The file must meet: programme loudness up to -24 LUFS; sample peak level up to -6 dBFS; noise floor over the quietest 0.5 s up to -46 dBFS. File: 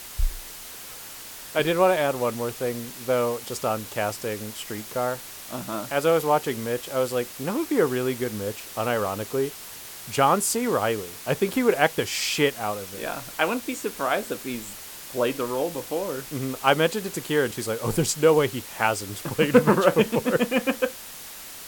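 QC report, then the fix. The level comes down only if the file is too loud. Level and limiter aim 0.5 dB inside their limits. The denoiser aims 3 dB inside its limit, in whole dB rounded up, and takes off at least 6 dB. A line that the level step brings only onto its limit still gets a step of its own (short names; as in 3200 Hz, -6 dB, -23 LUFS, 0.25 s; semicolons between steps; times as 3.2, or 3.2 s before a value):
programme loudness -25.0 LUFS: OK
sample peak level -4.0 dBFS: fail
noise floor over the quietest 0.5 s -40 dBFS: fail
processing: denoiser 9 dB, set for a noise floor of -40 dBFS; limiter -6.5 dBFS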